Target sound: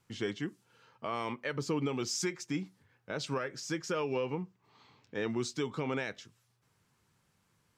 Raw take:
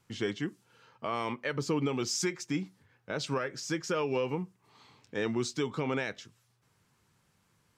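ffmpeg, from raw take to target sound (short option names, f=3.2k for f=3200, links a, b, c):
-filter_complex "[0:a]asettb=1/sr,asplit=3[a][b][c];[a]atrim=end=4.144[d];[b]atrim=start=4.14:end=5.3,asetpts=PTS-STARTPTS,afade=t=in:d=0.004:c=qsin,afade=t=out:st=1.156:d=0.004:c=qsin,equalizer=f=10k:t=o:w=0.72:g=-14.5[e];[c]atrim=start=5.296[f];[d][e]acrossfade=d=0.004:c1=hsin:c2=qsin[g];[g][f]acrossfade=d=0.004:c1=qsin:c2=hsin,volume=-2.5dB"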